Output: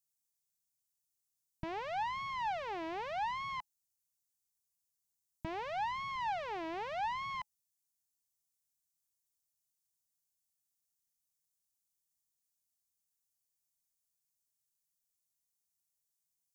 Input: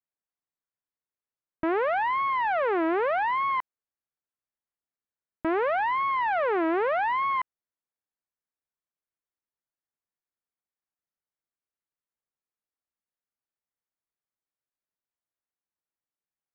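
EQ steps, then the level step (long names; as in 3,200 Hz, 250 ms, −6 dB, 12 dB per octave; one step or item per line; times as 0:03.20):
drawn EQ curve 180 Hz 0 dB, 260 Hz −17 dB, 500 Hz −23 dB, 850 Hz −9 dB, 1,300 Hz −23 dB, 6,400 Hz +10 dB
+2.0 dB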